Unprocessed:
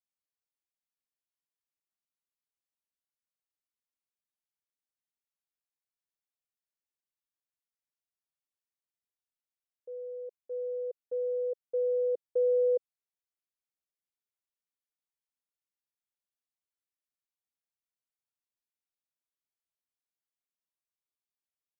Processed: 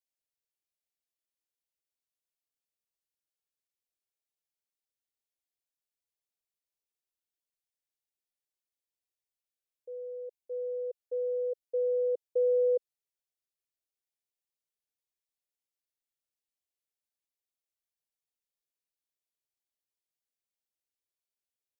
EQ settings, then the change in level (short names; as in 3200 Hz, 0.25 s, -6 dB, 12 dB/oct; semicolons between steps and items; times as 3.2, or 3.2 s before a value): fixed phaser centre 490 Hz, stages 4; 0.0 dB